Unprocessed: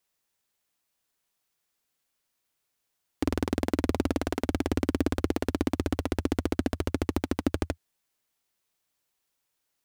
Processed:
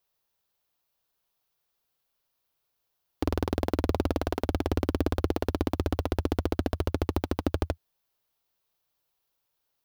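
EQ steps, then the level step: graphic EQ 250/2000/8000 Hz -7/-7/-11 dB; +3.5 dB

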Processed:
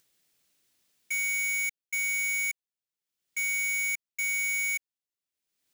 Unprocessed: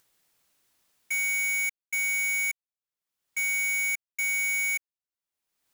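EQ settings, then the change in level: low shelf 90 Hz -8 dB; bell 990 Hz -9 dB 1.8 oct; bell 15000 Hz -4 dB 1.3 oct; +1.5 dB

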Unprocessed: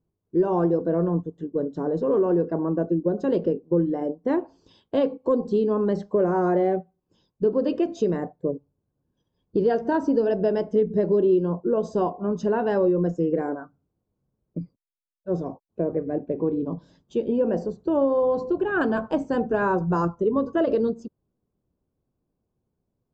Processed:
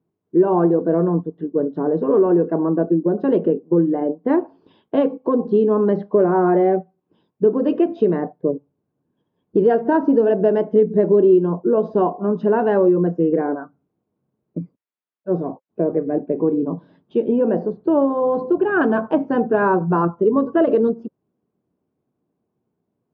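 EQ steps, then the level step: BPF 180–4000 Hz; air absorption 360 m; notch 530 Hz, Q 12; +7.5 dB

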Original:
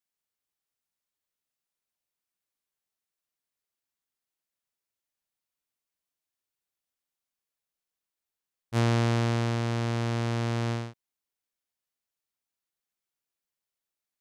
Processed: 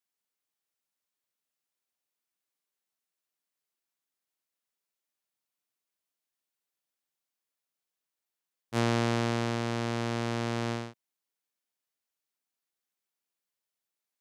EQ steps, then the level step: HPF 160 Hz 12 dB/oct; 0.0 dB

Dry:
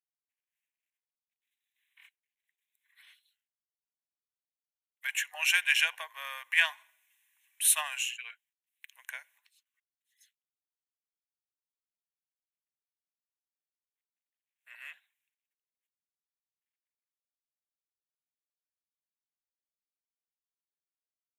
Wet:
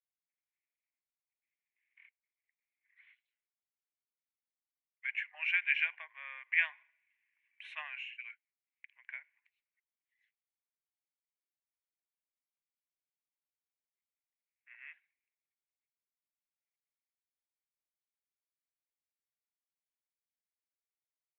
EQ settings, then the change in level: ladder low-pass 2400 Hz, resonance 70%; -2.0 dB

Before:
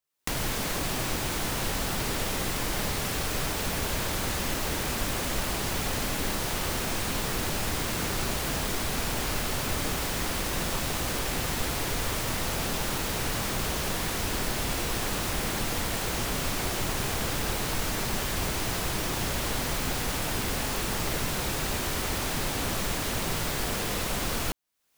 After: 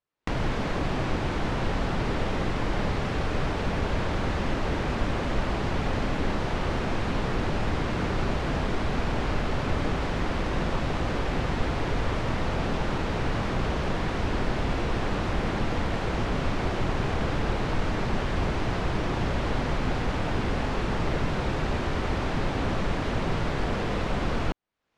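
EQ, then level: tape spacing loss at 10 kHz 31 dB; +5.5 dB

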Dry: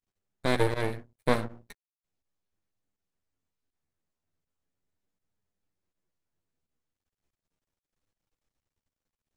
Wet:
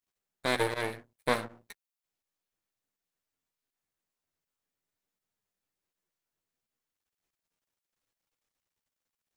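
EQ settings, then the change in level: tilt +3 dB/oct; high shelf 3600 Hz -8 dB; 0.0 dB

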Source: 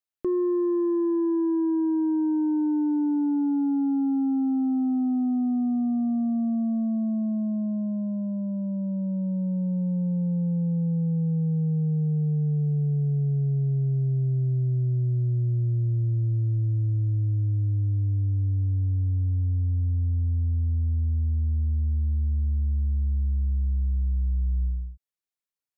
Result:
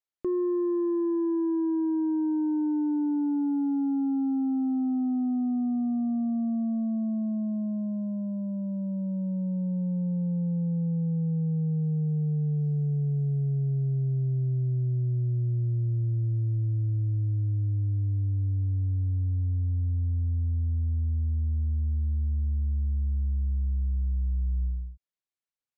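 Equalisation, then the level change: air absorption 51 m; -2.5 dB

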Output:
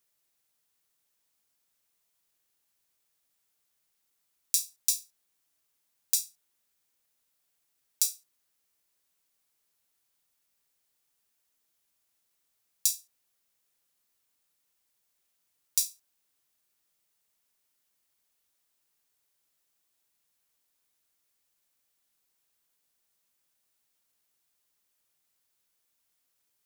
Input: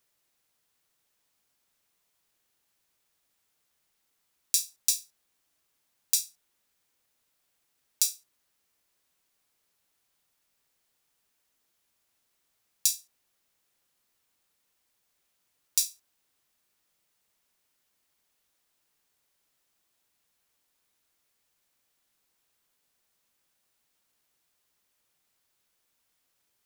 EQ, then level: high shelf 5400 Hz +6 dB; -5.5 dB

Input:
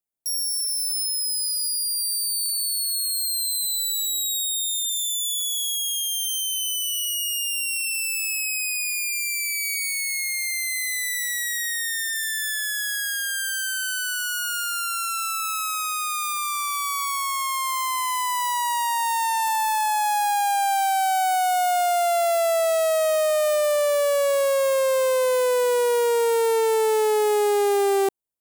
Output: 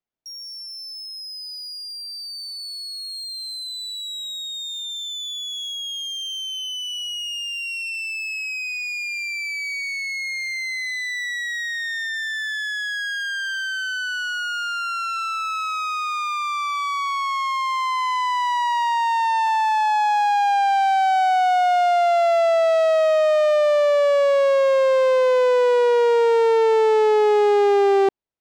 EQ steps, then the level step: air absorption 190 m; +4.5 dB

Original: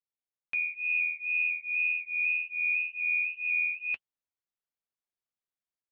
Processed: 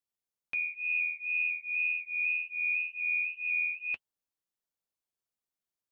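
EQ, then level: bell 2000 Hz -4.5 dB 1.7 oct; +2.0 dB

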